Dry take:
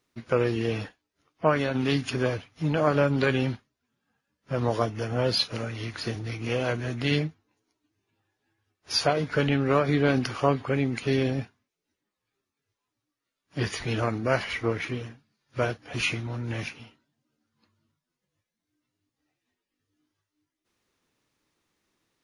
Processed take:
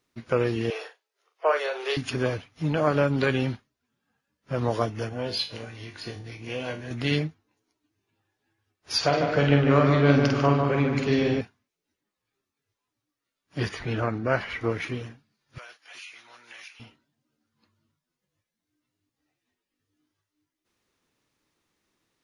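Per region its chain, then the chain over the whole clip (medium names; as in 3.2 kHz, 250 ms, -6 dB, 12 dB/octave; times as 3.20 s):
0.70–1.97 s: steep high-pass 370 Hz 72 dB/octave + doubling 41 ms -8 dB
5.09–6.91 s: dynamic bell 3.1 kHz, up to +5 dB, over -41 dBFS, Q 1.8 + Butterworth band-stop 1.3 kHz, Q 8 + feedback comb 50 Hz, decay 0.31 s, mix 80%
8.98–11.41 s: low-pass 7.1 kHz 24 dB/octave + doubling 49 ms -4.5 dB + filtered feedback delay 148 ms, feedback 52%, low-pass 2.5 kHz, level -4 dB
13.69–14.61 s: low-pass 2.3 kHz 6 dB/octave + peaking EQ 1.5 kHz +3.5 dB 0.43 oct
15.58–16.80 s: Bessel high-pass 1.7 kHz + compression, threshold -41 dBFS
whole clip: none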